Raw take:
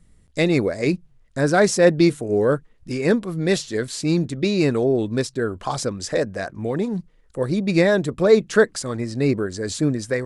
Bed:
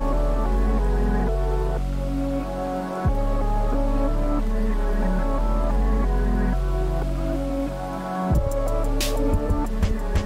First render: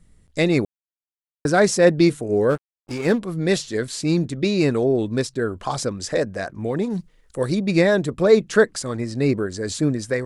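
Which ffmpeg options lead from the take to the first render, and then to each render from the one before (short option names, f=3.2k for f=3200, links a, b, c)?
-filter_complex "[0:a]asplit=3[a][b][c];[a]afade=t=out:st=2.49:d=0.02[d];[b]aeval=exprs='sgn(val(0))*max(abs(val(0))-0.0188,0)':c=same,afade=t=in:st=2.49:d=0.02,afade=t=out:st=3.17:d=0.02[e];[c]afade=t=in:st=3.17:d=0.02[f];[d][e][f]amix=inputs=3:normalize=0,asettb=1/sr,asplit=3[g][h][i];[g]atrim=end=6.904[j];[h]atrim=start=6.9:end=7.55,asetpts=PTS-STARTPTS,afade=t=in:d=0.004:c=qsin,afade=t=out:st=0.646:d=0.004:c=qsin,highshelf=f=2.1k:g=8[k];[i]atrim=start=7.546[l];[j][k]acrossfade=d=0.004:c1=hsin:c2=qsin[m];[m][l]acrossfade=d=0.004:c1=qsin:c2=hsin,asplit=3[n][o][p];[n]atrim=end=0.65,asetpts=PTS-STARTPTS,afade=t=out:st=0.646:d=0.004:c=hsin[q];[o]atrim=start=0.65:end=1.45,asetpts=PTS-STARTPTS,volume=0[r];[p]atrim=start=1.45,asetpts=PTS-STARTPTS,afade=t=in:d=0.004:c=hsin[s];[q][r][s]concat=n=3:v=0:a=1"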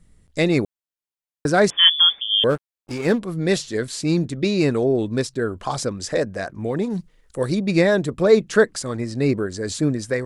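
-filter_complex "[0:a]asettb=1/sr,asplit=3[a][b][c];[a]atrim=end=1.704[d];[b]atrim=start=1.7:end=2.44,asetpts=PTS-STARTPTS,afade=t=in:d=0.004:c=qsin,afade=t=out:st=0.736:d=0.004:c=qsin,lowpass=f=3.1k:t=q:w=0.5098,lowpass=f=3.1k:t=q:w=0.6013,lowpass=f=3.1k:t=q:w=0.9,lowpass=f=3.1k:t=q:w=2.563,afreqshift=-3600[e];[c]atrim=start=2.436[f];[d][e]acrossfade=d=0.004:c1=hsin:c2=qsin[g];[g][f]acrossfade=d=0.004:c1=qsin:c2=hsin"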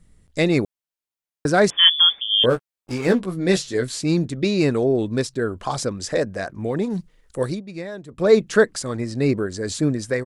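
-filter_complex "[0:a]asplit=3[a][b][c];[a]afade=t=out:st=2.39:d=0.02[d];[b]asplit=2[e][f];[f]adelay=16,volume=-6.5dB[g];[e][g]amix=inputs=2:normalize=0,afade=t=in:st=2.39:d=0.02,afade=t=out:st=3.98:d=0.02[h];[c]afade=t=in:st=3.98:d=0.02[i];[d][h][i]amix=inputs=3:normalize=0,asplit=3[j][k][l];[j]atrim=end=7.63,asetpts=PTS-STARTPTS,afade=t=out:st=7.43:d=0.2:silence=0.16788[m];[k]atrim=start=7.63:end=8.09,asetpts=PTS-STARTPTS,volume=-15.5dB[n];[l]atrim=start=8.09,asetpts=PTS-STARTPTS,afade=t=in:d=0.2:silence=0.16788[o];[m][n][o]concat=n=3:v=0:a=1"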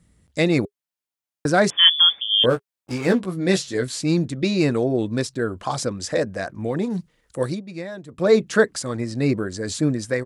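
-af "highpass=59,bandreject=f=410:w=12"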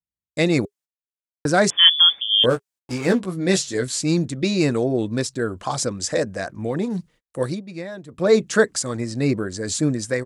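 -af "agate=range=-42dB:threshold=-49dB:ratio=16:detection=peak,adynamicequalizer=threshold=0.00891:dfrequency=7300:dqfactor=1.2:tfrequency=7300:tqfactor=1.2:attack=5:release=100:ratio=0.375:range=3.5:mode=boostabove:tftype=bell"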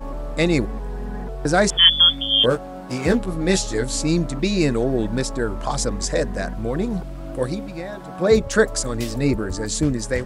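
-filter_complex "[1:a]volume=-8dB[a];[0:a][a]amix=inputs=2:normalize=0"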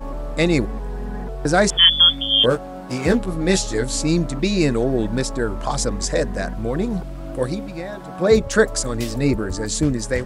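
-af "volume=1dB,alimiter=limit=-2dB:level=0:latency=1"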